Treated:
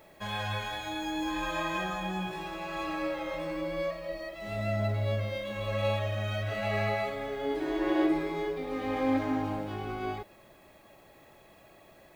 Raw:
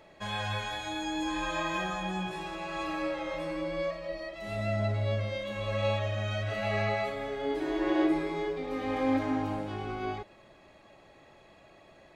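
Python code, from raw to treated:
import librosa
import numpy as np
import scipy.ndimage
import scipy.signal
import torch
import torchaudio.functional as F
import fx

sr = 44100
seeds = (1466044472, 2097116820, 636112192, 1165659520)

y = scipy.signal.medfilt(x, 5)
y = fx.dmg_noise_colour(y, sr, seeds[0], colour='blue', level_db=-69.0)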